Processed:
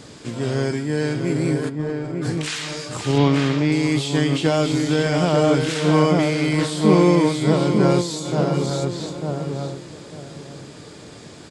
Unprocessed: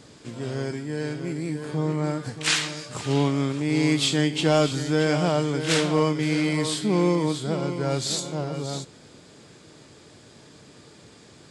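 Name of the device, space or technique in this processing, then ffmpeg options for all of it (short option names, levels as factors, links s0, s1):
de-esser from a sidechain: -filter_complex "[0:a]asplit=3[s0][s1][s2];[s0]afade=t=out:st=1.68:d=0.02[s3];[s1]agate=range=0.0891:threshold=0.0891:ratio=16:detection=peak,afade=t=in:st=1.68:d=0.02,afade=t=out:st=2.21:d=0.02[s4];[s2]afade=t=in:st=2.21:d=0.02[s5];[s3][s4][s5]amix=inputs=3:normalize=0,asettb=1/sr,asplit=3[s6][s7][s8];[s6]atrim=end=3.184[s9];[s7]atrim=start=3.18:end=3.72,asetpts=PTS-STARTPTS,afade=t=in:d=0.004:c=qsin,afade=t=out:st=0.536:d=0.004:c=qsin,lowpass=f=5600:w=0.5412,lowpass=f=5600:w=1.3066[s10];[s8]atrim=start=3.716[s11];[s9][s10]acrossfade=d=0.004:c1=hsin:c2=qsin[s12];[s12][s11]acrossfade=d=0.004:c1=qsin:c2=hsin,asplit=2[s13][s14];[s14]adelay=897,lowpass=f=1100:p=1,volume=0.668,asplit=2[s15][s16];[s16]adelay=897,lowpass=f=1100:p=1,volume=0.26,asplit=2[s17][s18];[s18]adelay=897,lowpass=f=1100:p=1,volume=0.26,asplit=2[s19][s20];[s20]adelay=897,lowpass=f=1100:p=1,volume=0.26[s21];[s13][s15][s17][s19][s21]amix=inputs=5:normalize=0,asplit=2[s22][s23];[s23]highpass=4300,apad=whole_len=665572[s24];[s22][s24]sidechaincompress=threshold=0.0112:ratio=3:attack=0.76:release=71,volume=2.37"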